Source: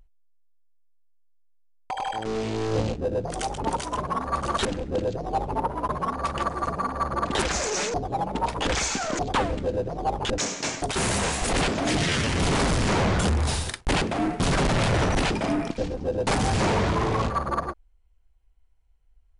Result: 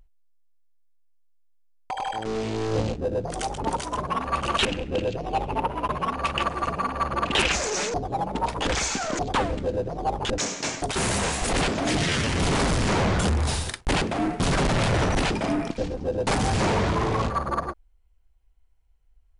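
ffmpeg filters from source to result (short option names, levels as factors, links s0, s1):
-filter_complex "[0:a]asettb=1/sr,asplit=3[s0][s1][s2];[s0]atrim=end=4.104[s3];[s1]atrim=start=4.1:end=7.56,asetpts=PTS-STARTPTS,afade=t=in:d=0.004:c=qsin,afade=t=out:st=3.456:d=0.004:c=qsin,equalizer=f=2700:t=o:w=0.62:g=13[s4];[s2]atrim=start=7.556[s5];[s3][s4]acrossfade=d=0.004:c1=hsin:c2=qsin[s6];[s6][s5]acrossfade=d=0.004:c1=qsin:c2=hsin"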